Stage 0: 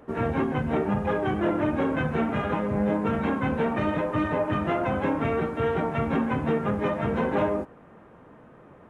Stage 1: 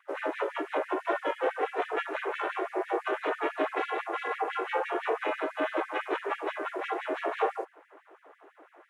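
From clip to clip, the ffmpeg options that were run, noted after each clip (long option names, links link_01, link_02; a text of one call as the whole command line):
ffmpeg -i in.wav -af "aeval=exprs='val(0)*sin(2*PI*170*n/s)':channel_layout=same,afftfilt=real='re*gte(b*sr/1024,260*pow(1700/260,0.5+0.5*sin(2*PI*6*pts/sr)))':imag='im*gte(b*sr/1024,260*pow(1700/260,0.5+0.5*sin(2*PI*6*pts/sr)))':win_size=1024:overlap=0.75,volume=2.5dB" out.wav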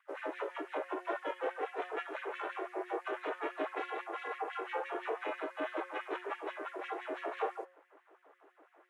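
ffmpeg -i in.wav -af "bandreject=frequency=180.3:width_type=h:width=4,bandreject=frequency=360.6:width_type=h:width=4,bandreject=frequency=540.9:width_type=h:width=4,bandreject=frequency=721.2:width_type=h:width=4,bandreject=frequency=901.5:width_type=h:width=4,bandreject=frequency=1081.8:width_type=h:width=4,bandreject=frequency=1262.1:width_type=h:width=4,bandreject=frequency=1442.4:width_type=h:width=4,bandreject=frequency=1622.7:width_type=h:width=4,bandreject=frequency=1803:width_type=h:width=4,bandreject=frequency=1983.3:width_type=h:width=4,bandreject=frequency=2163.6:width_type=h:width=4,bandreject=frequency=2343.9:width_type=h:width=4,bandreject=frequency=2524.2:width_type=h:width=4,bandreject=frequency=2704.5:width_type=h:width=4,bandreject=frequency=2884.8:width_type=h:width=4,bandreject=frequency=3065.1:width_type=h:width=4,bandreject=frequency=3245.4:width_type=h:width=4,bandreject=frequency=3425.7:width_type=h:width=4,bandreject=frequency=3606:width_type=h:width=4,bandreject=frequency=3786.3:width_type=h:width=4,bandreject=frequency=3966.6:width_type=h:width=4,bandreject=frequency=4146.9:width_type=h:width=4,bandreject=frequency=4327.2:width_type=h:width=4,bandreject=frequency=4507.5:width_type=h:width=4,bandreject=frequency=4687.8:width_type=h:width=4,bandreject=frequency=4868.1:width_type=h:width=4,bandreject=frequency=5048.4:width_type=h:width=4,bandreject=frequency=5228.7:width_type=h:width=4,bandreject=frequency=5409:width_type=h:width=4,bandreject=frequency=5589.3:width_type=h:width=4,bandreject=frequency=5769.6:width_type=h:width=4,bandreject=frequency=5949.9:width_type=h:width=4,bandreject=frequency=6130.2:width_type=h:width=4,bandreject=frequency=6310.5:width_type=h:width=4,bandreject=frequency=6490.8:width_type=h:width=4,bandreject=frequency=6671.1:width_type=h:width=4,bandreject=frequency=6851.4:width_type=h:width=4,bandreject=frequency=7031.7:width_type=h:width=4,volume=-7.5dB" out.wav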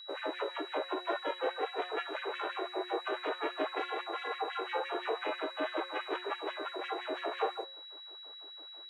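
ffmpeg -i in.wav -af "aeval=exprs='val(0)+0.00355*sin(2*PI*3900*n/s)':channel_layout=same,volume=2.5dB" out.wav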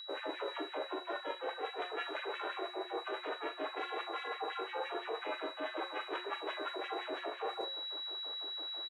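ffmpeg -i in.wav -filter_complex "[0:a]areverse,acompressor=threshold=-44dB:ratio=6,areverse,asplit=2[link_01][link_02];[link_02]adelay=42,volume=-12.5dB[link_03];[link_01][link_03]amix=inputs=2:normalize=0,volume=7dB" out.wav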